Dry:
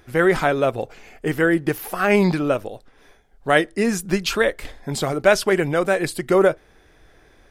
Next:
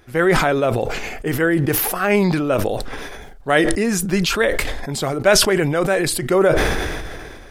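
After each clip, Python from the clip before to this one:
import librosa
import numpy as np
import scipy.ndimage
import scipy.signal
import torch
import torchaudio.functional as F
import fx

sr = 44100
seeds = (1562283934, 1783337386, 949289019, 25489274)

y = fx.sustainer(x, sr, db_per_s=28.0)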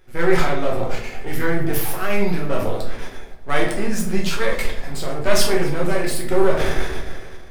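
y = np.where(x < 0.0, 10.0 ** (-12.0 / 20.0) * x, x)
y = fx.echo_feedback(y, sr, ms=264, feedback_pct=46, wet_db=-21)
y = fx.room_shoebox(y, sr, seeds[0], volume_m3=77.0, walls='mixed', distance_m=0.99)
y = y * 10.0 ** (-6.0 / 20.0)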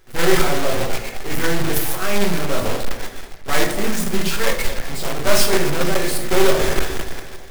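y = fx.block_float(x, sr, bits=3)
y = fx.echo_stepped(y, sr, ms=114, hz=260.0, octaves=1.4, feedback_pct=70, wet_db=-9.0)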